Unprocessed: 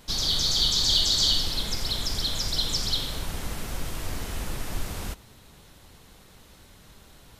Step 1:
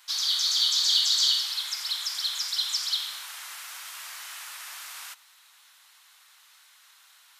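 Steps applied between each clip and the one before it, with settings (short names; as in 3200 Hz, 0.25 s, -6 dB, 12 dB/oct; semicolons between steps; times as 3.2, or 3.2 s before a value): HPF 1100 Hz 24 dB/oct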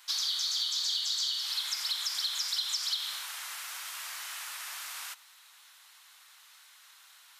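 compressor 10:1, threshold -28 dBFS, peak gain reduction 10.5 dB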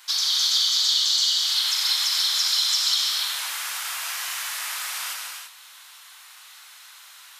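non-linear reverb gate 0.37 s flat, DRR -1.5 dB; gain +6.5 dB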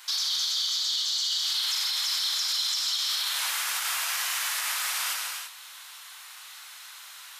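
limiter -20.5 dBFS, peak gain reduction 11 dB; gain +1.5 dB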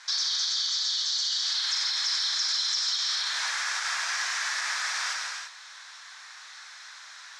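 speaker cabinet 340–6700 Hz, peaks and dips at 1700 Hz +7 dB, 2900 Hz -8 dB, 5600 Hz +4 dB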